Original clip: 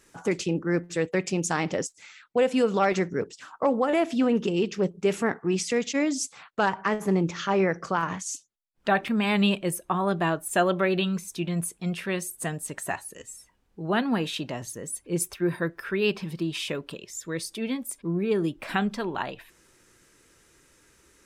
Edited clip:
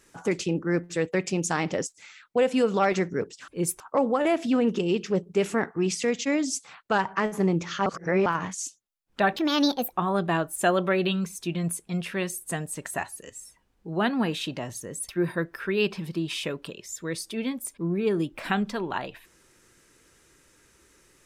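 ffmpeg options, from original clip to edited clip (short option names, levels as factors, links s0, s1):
-filter_complex "[0:a]asplit=8[s0][s1][s2][s3][s4][s5][s6][s7];[s0]atrim=end=3.482[s8];[s1]atrim=start=15.008:end=15.332[s9];[s2]atrim=start=3.478:end=7.542[s10];[s3]atrim=start=7.538:end=7.942,asetpts=PTS-STARTPTS,areverse[s11];[s4]atrim=start=7.938:end=9.044[s12];[s5]atrim=start=9.04:end=9.85,asetpts=PTS-STARTPTS,asetrate=63063,aresample=44100[s13];[s6]atrim=start=9.846:end=15.012[s14];[s7]atrim=start=15.328[s15];[s8][s9]acrossfade=d=0.004:c1=hsin:c2=hsin[s16];[s16][s10]acrossfade=d=0.004:c1=hsin:c2=hsin[s17];[s17][s11]acrossfade=d=0.004:c1=hsin:c2=hsin[s18];[s18][s12]acrossfade=d=0.004:c1=hsin:c2=hsin[s19];[s19][s13]acrossfade=d=0.004:c1=hsin:c2=hsin[s20];[s20][s14]acrossfade=d=0.004:c1=hsin:c2=hsin[s21];[s21][s15]acrossfade=d=0.004:c1=hsin:c2=hsin"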